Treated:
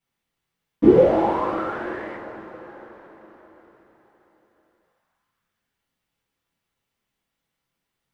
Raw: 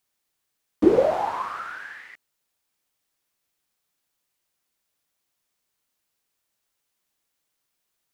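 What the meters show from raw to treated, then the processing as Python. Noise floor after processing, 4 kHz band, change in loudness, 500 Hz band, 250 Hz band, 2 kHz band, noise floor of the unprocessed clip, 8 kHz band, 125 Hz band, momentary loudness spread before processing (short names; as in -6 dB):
-82 dBFS, 0.0 dB, +3.0 dB, +4.5 dB, +5.0 dB, +1.5 dB, -79 dBFS, n/a, +10.0 dB, 20 LU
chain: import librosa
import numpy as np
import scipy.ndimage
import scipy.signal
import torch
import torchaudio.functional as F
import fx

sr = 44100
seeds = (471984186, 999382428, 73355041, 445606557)

y = fx.bass_treble(x, sr, bass_db=7, treble_db=-11)
y = fx.rev_double_slope(y, sr, seeds[0], early_s=0.33, late_s=4.8, knee_db=-18, drr_db=-10.0)
y = F.gain(torch.from_numpy(y), -7.5).numpy()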